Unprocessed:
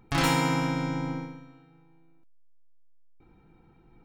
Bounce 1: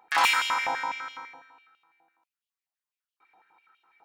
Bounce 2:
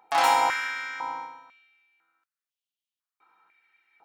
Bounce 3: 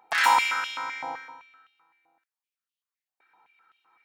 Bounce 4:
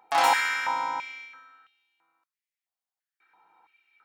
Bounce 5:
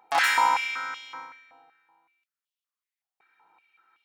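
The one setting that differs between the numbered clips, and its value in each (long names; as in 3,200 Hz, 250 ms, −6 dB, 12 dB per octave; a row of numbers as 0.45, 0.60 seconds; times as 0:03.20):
high-pass on a step sequencer, speed: 12, 2, 7.8, 3, 5.3 Hertz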